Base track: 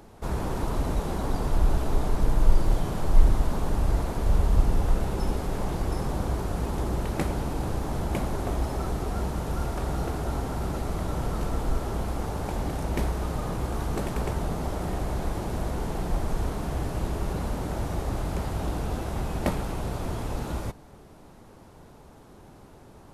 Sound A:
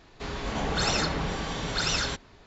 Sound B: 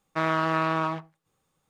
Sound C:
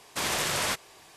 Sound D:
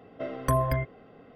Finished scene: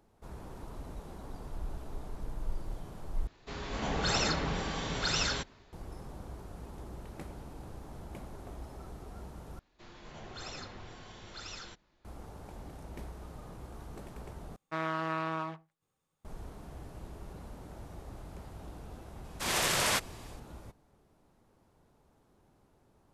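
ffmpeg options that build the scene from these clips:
-filter_complex "[1:a]asplit=2[a][b];[0:a]volume=-17dB[c];[a]dynaudnorm=f=320:g=3:m=3dB[d];[b]afreqshift=-65[e];[3:a]dynaudnorm=f=150:g=3:m=10dB[f];[c]asplit=4[g][h][i][j];[g]atrim=end=3.274[k];[d]atrim=end=2.46,asetpts=PTS-STARTPTS,volume=-6.5dB[l];[h]atrim=start=5.726:end=9.594[m];[e]atrim=end=2.46,asetpts=PTS-STARTPTS,volume=-17.5dB[n];[i]atrim=start=12.046:end=14.564[o];[2:a]atrim=end=1.69,asetpts=PTS-STARTPTS,volume=-9dB[p];[j]atrim=start=16.246[q];[f]atrim=end=1.16,asetpts=PTS-STARTPTS,volume=-10dB,afade=t=in:d=0.004:c=hsin,afade=t=out:st=1.156:d=0.004:c=hsin,adelay=848484S[r];[k][l]acrossfade=d=0.004:c1=hsin:c2=hsin[s];[s][m]acrossfade=d=0.004:c1=hsin:c2=hsin[t];[t][n]acrossfade=d=0.004:c1=hsin:c2=hsin[u];[u][o]acrossfade=d=0.004:c1=hsin:c2=hsin[v];[v][p]acrossfade=d=0.004:c1=hsin:c2=hsin[w];[w][q]acrossfade=d=0.004:c1=hsin:c2=hsin[x];[x][r]amix=inputs=2:normalize=0"

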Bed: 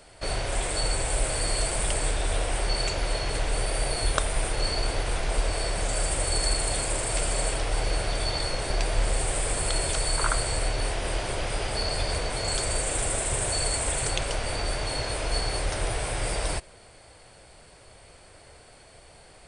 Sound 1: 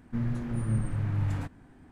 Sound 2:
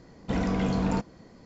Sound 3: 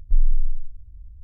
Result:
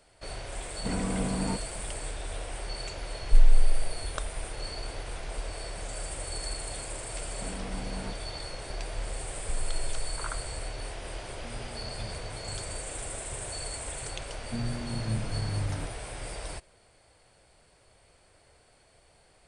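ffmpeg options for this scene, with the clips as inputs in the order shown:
-filter_complex "[2:a]asplit=2[a][b];[3:a]asplit=2[c][d];[1:a]asplit=2[e][f];[0:a]volume=-10dB[g];[a]acrusher=bits=10:mix=0:aa=0.000001[h];[d]acompressor=threshold=-22dB:ratio=6:attack=3.2:release=140:knee=1:detection=peak[i];[h]atrim=end=1.45,asetpts=PTS-STARTPTS,volume=-4.5dB,afade=t=in:d=0.004:c=hsin,afade=t=out:st=1.446:d=0.004:c=hsin,adelay=560[j];[c]atrim=end=1.23,asetpts=PTS-STARTPTS,volume=-1dB,afade=t=in:d=0.004:c=hsin,afade=t=out:st=1.226:d=0.004:c=hsin,adelay=141561S[k];[b]atrim=end=1.45,asetpts=PTS-STARTPTS,volume=-14dB,afade=t=in:d=0.004:c=hsin,afade=t=out:st=1.446:d=0.004:c=hsin,adelay=7120[l];[i]atrim=end=1.23,asetpts=PTS-STARTPTS,volume=-4.5dB,afade=t=in:d=0.004:c=hsin,afade=t=out:st=1.226:d=0.004:c=hsin,adelay=413658S[m];[e]atrim=end=1.91,asetpts=PTS-STARTPTS,volume=-16.5dB,afade=t=in:d=0.004:c=hsin,afade=t=out:st=1.906:d=0.004:c=hsin,adelay=498330S[n];[f]atrim=end=1.91,asetpts=PTS-STARTPTS,volume=-3dB,afade=t=in:d=0.004:c=hsin,afade=t=out:st=1.906:d=0.004:c=hsin,adelay=14390[o];[g][j][k][l][m][n][o]amix=inputs=7:normalize=0"

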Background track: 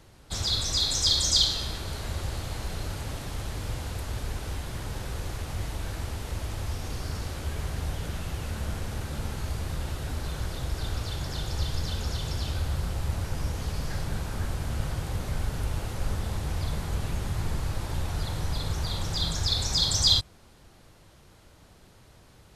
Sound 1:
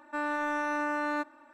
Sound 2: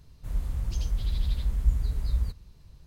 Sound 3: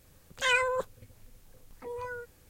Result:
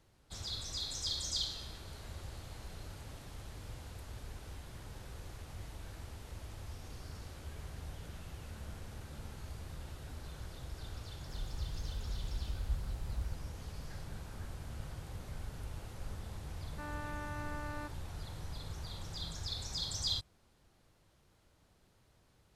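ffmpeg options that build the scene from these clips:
-filter_complex "[0:a]volume=-14dB[a];[2:a]atrim=end=2.86,asetpts=PTS-STARTPTS,volume=-13dB,afade=t=in:d=0.004:c=hsin,afade=t=out:st=2.856:d=0.004:c=hsin,adelay=11040[b];[1:a]atrim=end=1.53,asetpts=PTS-STARTPTS,volume=-13.5dB,afade=t=in:d=0.004:c=hsin,afade=t=out:st=1.526:d=0.004:c=hsin,adelay=16650[c];[a][b][c]amix=inputs=3:normalize=0"

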